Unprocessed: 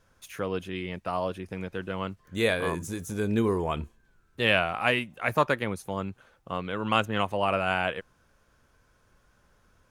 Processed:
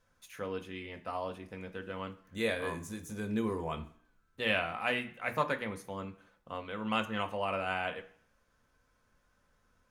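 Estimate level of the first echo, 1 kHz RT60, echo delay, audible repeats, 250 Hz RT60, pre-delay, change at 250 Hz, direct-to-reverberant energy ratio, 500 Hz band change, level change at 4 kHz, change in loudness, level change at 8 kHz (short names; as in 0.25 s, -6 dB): none, 0.60 s, none, none, 0.50 s, 3 ms, -7.0 dB, 4.5 dB, -7.5 dB, -7.5 dB, -7.0 dB, -7.5 dB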